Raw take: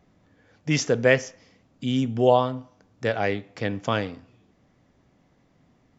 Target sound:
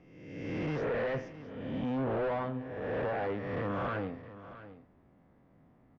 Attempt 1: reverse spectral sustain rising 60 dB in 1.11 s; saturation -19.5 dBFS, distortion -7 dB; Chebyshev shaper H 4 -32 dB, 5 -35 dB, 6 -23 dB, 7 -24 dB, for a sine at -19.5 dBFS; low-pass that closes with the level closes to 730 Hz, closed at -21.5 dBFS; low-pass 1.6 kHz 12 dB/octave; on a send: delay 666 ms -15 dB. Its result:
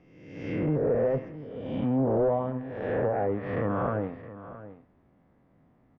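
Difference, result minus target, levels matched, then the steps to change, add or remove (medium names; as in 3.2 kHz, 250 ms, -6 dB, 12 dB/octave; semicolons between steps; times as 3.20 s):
saturation: distortion -5 dB
change: saturation -29 dBFS, distortion -2 dB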